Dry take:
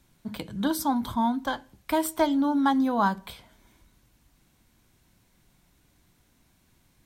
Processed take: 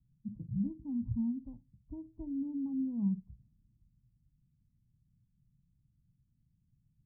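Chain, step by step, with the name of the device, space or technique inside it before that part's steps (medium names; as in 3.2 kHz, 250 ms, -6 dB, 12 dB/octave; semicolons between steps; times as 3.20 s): peaking EQ 960 Hz +14.5 dB 0.69 oct; spectral noise reduction 9 dB; the neighbour's flat through the wall (low-pass 190 Hz 24 dB/octave; peaking EQ 130 Hz +8 dB 0.82 oct)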